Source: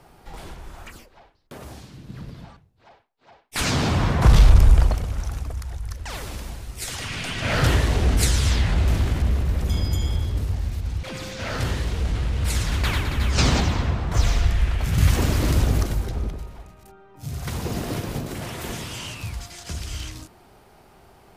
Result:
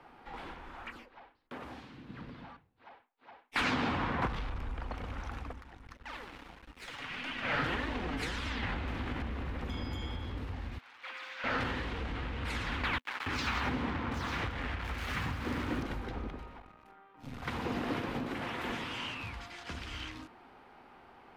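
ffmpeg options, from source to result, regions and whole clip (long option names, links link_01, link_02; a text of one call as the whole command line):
ffmpeg -i in.wav -filter_complex "[0:a]asettb=1/sr,asplit=3[link_01][link_02][link_03];[link_01]atrim=end=5.534[link_04];[link_02]atrim=start=5.53:end=8.63,asetpts=PTS-STARTPTS,afade=type=in:duration=0.004:curve=qsin,afade=type=out:start_time=3.096:duration=0.004:curve=qsin,flanger=delay=3.2:depth=3.9:regen=34:speed=1.7:shape=sinusoidal,aeval=exprs='sgn(val(0))*max(abs(val(0))-0.00668,0)':channel_layout=same[link_05];[link_03]atrim=start=8.626[link_06];[link_04][link_05]acrossfade=duration=0.004:curve1=hsin:curve2=qsin[link_07];[link_07][link_06]acrossfade=duration=0.004:curve1=qsin:curve2=hsin,asettb=1/sr,asplit=3[link_08][link_09][link_10];[link_08]atrim=end=10.784[link_11];[link_09]atrim=start=10.78:end=11.44,asetpts=PTS-STARTPTS,afade=type=in:duration=0.004:curve=qsin,afade=type=out:start_time=0.656:duration=0.004:curve=qsin,aeval=exprs='val(0)+0.5*0.0126*sgn(val(0))':channel_layout=same,highpass=1300,highshelf=frequency=2100:gain=-7.5[link_12];[link_10]atrim=start=11.436[link_13];[link_11][link_12]acrossfade=duration=0.004:curve1=hsin:curve2=qsin[link_14];[link_14][link_13]acrossfade=duration=0.004:curve1=qsin:curve2=hsin,asettb=1/sr,asplit=3[link_15][link_16][link_17];[link_15]atrim=end=12.984[link_18];[link_16]atrim=start=12.98:end=15.83,asetpts=PTS-STARTPTS,afade=type=in:duration=0.004:curve=qsin,afade=type=out:start_time=2.846:duration=0.004:curve=qsin,highpass=frequency=51:width=0.5412,highpass=frequency=51:width=1.3066,acrossover=split=680|3100[link_19][link_20][link_21];[link_20]adelay=90[link_22];[link_19]adelay=280[link_23];[link_23][link_22][link_21]amix=inputs=3:normalize=0,atrim=end_sample=125685,acrusher=bits=4:mix=0:aa=0.5[link_24];[link_17]atrim=start=15.826[link_25];[link_18][link_24]acrossfade=duration=0.004:curve1=hsin:curve2=qsin[link_26];[link_26][link_25]acrossfade=duration=0.004:curve1=qsin:curve2=hsin,asettb=1/sr,asplit=3[link_27][link_28][link_29];[link_27]atrim=end=16.594[link_30];[link_28]atrim=start=16.59:end=17.42,asetpts=PTS-STARTPTS,afade=type=in:duration=0.004:curve=qsin,afade=type=out:start_time=0.826:duration=0.004:curve=qsin,aeval=exprs='if(lt(val(0),0),0.251*val(0),val(0))':channel_layout=same,asplit=2[link_31][link_32];[link_32]adelay=45,volume=-11dB[link_33];[link_31][link_33]amix=inputs=2:normalize=0,atrim=end_sample=36603[link_34];[link_29]atrim=start=17.416[link_35];[link_30][link_34]acrossfade=duration=0.004:curve1=hsin:curve2=qsin[link_36];[link_36][link_35]acrossfade=duration=0.004:curve1=qsin:curve2=hsin,equalizer=frequency=250:width_type=o:width=0.33:gain=7,equalizer=frequency=400:width_type=o:width=0.33:gain=-6,equalizer=frequency=630:width_type=o:width=0.33:gain=-8,acompressor=threshold=-21dB:ratio=12,acrossover=split=310 3300:gain=0.2 1 0.0708[link_37][link_38][link_39];[link_37][link_38][link_39]amix=inputs=3:normalize=0" out.wav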